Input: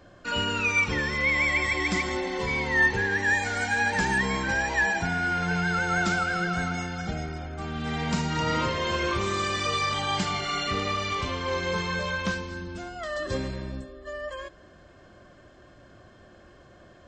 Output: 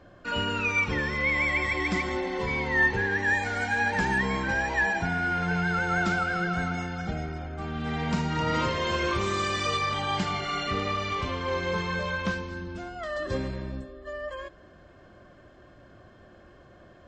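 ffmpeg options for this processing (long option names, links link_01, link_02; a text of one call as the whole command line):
ffmpeg -i in.wav -af "asetnsamples=nb_out_samples=441:pad=0,asendcmd='8.54 highshelf g -2.5;9.77 highshelf g -10.5',highshelf=frequency=4900:gain=-11.5" out.wav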